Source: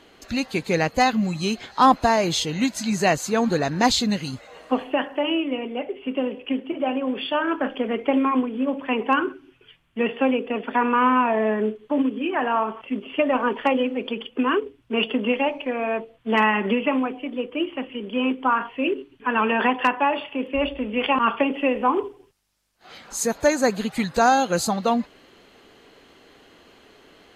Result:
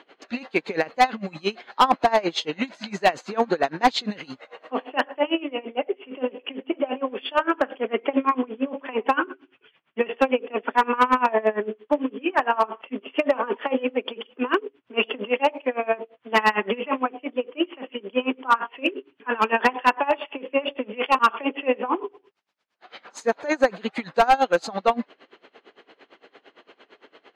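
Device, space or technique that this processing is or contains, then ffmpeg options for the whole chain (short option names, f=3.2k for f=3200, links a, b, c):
helicopter radio: -af "highpass=350,lowpass=3k,aeval=exprs='val(0)*pow(10,-23*(0.5-0.5*cos(2*PI*8.8*n/s))/20)':c=same,asoftclip=type=hard:threshold=-16.5dB,volume=7dB"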